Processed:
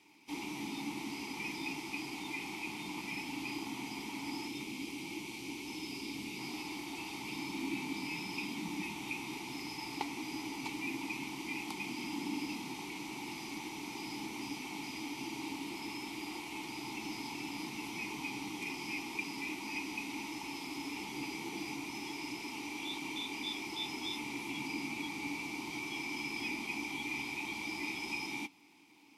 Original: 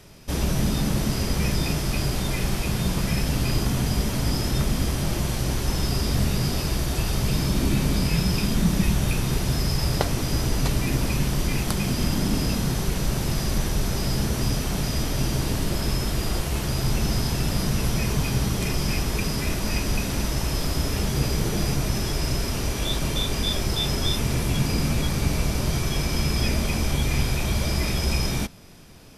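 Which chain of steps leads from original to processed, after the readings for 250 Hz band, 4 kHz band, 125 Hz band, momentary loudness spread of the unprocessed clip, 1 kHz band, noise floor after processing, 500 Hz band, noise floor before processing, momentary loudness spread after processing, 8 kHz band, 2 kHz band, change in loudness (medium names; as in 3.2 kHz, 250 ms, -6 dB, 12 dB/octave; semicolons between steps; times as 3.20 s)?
-13.5 dB, -13.5 dB, -30.5 dB, 3 LU, -10.0 dB, -45 dBFS, -18.0 dB, -28 dBFS, 4 LU, -17.0 dB, -6.5 dB, -15.0 dB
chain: vowel filter u; tilt EQ +4 dB/octave; time-frequency box 4.47–6.39 s, 620–2100 Hz -6 dB; crackle 440 per s -65 dBFS; trim +3 dB; Vorbis 64 kbps 48 kHz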